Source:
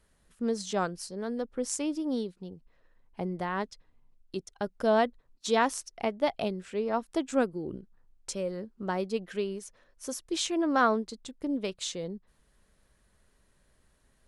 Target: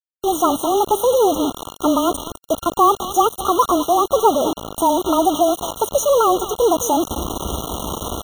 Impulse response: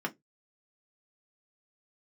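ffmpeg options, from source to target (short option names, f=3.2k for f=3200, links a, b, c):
-filter_complex "[0:a]aeval=exprs='val(0)+0.5*0.0376*sgn(val(0))':c=same,highpass=f=43:w=0.5412,highpass=f=43:w=1.3066,equalizer=f=2.1k:w=1.1:g=-11.5,aecho=1:1:365:0.168,asetrate=76440,aresample=44100,afreqshift=-19,dynaudnorm=f=110:g=5:m=15dB,equalizer=f=120:w=2.4:g=-13,acrossover=split=9800[a][b];[b]acompressor=threshold=-40dB:ratio=4:attack=1:release=60[c];[a][c]amix=inputs=2:normalize=0,acrusher=bits=3:mix=0:aa=0.000001,afftfilt=real='re*eq(mod(floor(b*sr/1024/1400),2),0)':imag='im*eq(mod(floor(b*sr/1024/1400),2),0)':win_size=1024:overlap=0.75"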